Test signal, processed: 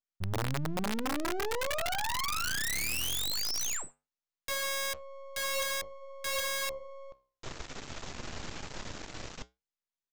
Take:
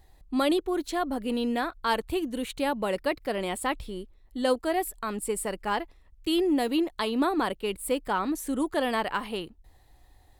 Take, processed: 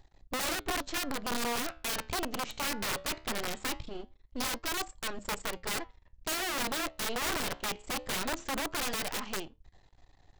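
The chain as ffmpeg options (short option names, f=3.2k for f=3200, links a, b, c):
-af "aresample=16000,aeval=exprs='max(val(0),0)':c=same,aresample=44100,flanger=delay=7.2:depth=8.5:regen=-78:speed=0.2:shape=sinusoidal,aeval=exprs='(mod(33.5*val(0)+1,2)-1)/33.5':c=same,volume=5dB"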